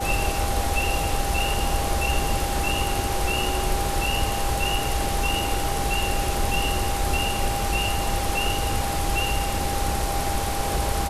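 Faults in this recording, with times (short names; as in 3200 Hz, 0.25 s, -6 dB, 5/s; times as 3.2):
tone 800 Hz -29 dBFS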